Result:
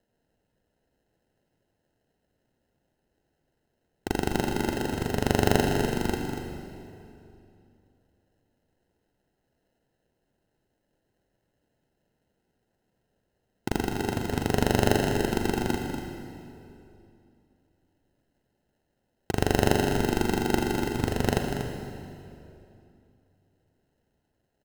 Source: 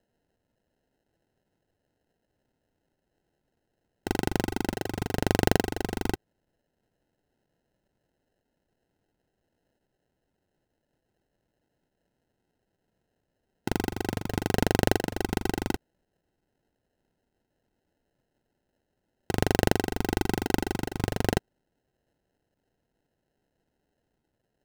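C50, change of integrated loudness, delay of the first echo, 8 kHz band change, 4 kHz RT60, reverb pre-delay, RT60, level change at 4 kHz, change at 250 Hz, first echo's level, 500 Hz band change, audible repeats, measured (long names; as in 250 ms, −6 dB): 3.0 dB, +1.5 dB, 239 ms, +1.5 dB, 2.2 s, 35 ms, 2.7 s, +1.5 dB, +2.0 dB, −9.5 dB, +2.5 dB, 1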